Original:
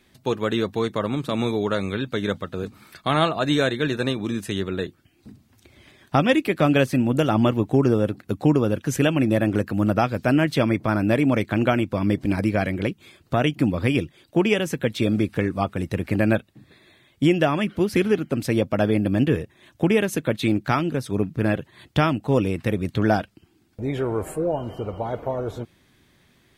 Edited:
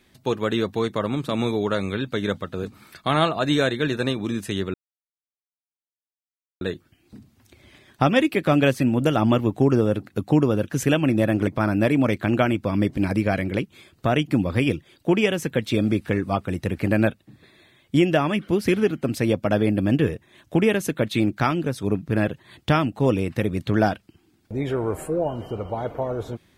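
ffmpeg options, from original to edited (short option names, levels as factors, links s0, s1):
-filter_complex "[0:a]asplit=3[s0][s1][s2];[s0]atrim=end=4.74,asetpts=PTS-STARTPTS,afade=t=out:st=4.736:d=0.004:c=hsin,apad=pad_dur=1.87[s3];[s1]atrim=start=4.74:end=9.602,asetpts=PTS-STARTPTS,afade=t=in:d=0.004:c=hsin[s4];[s2]atrim=start=10.748[s5];[s3][s4]concat=n=2:v=0:a=1[s6];[s6][s5]acrossfade=d=0.004:c1=hsin:c2=hsin"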